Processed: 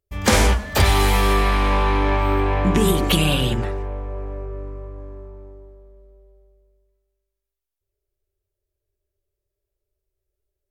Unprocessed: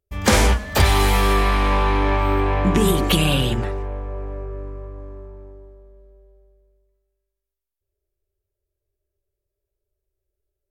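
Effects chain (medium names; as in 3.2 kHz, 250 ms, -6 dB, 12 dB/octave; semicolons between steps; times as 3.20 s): de-hum 68.49 Hz, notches 27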